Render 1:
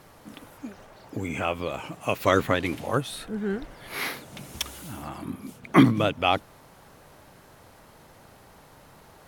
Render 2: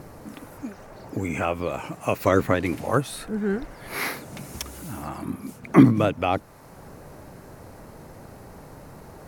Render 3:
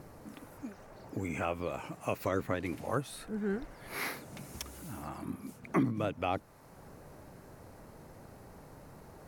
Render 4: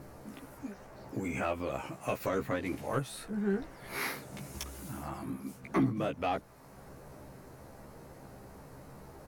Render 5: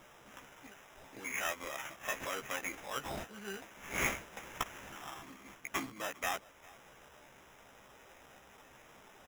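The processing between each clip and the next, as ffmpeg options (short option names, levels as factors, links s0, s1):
-filter_complex "[0:a]acrossover=split=590[s0][s1];[s0]acompressor=mode=upward:threshold=0.0112:ratio=2.5[s2];[s1]alimiter=limit=0.158:level=0:latency=1:release=369[s3];[s2][s3]amix=inputs=2:normalize=0,equalizer=f=3300:w=2.5:g=-8,volume=1.5"
-af "alimiter=limit=0.299:level=0:latency=1:release=496,volume=0.376"
-filter_complex "[0:a]asoftclip=type=tanh:threshold=0.075,asplit=2[s0][s1];[s1]adelay=15,volume=0.708[s2];[s0][s2]amix=inputs=2:normalize=0"
-filter_complex "[0:a]bandpass=f=4000:t=q:w=1.1:csg=0,asplit=2[s0][s1];[s1]adelay=402.3,volume=0.0891,highshelf=f=4000:g=-9.05[s2];[s0][s2]amix=inputs=2:normalize=0,acrusher=samples=10:mix=1:aa=0.000001,volume=2.66"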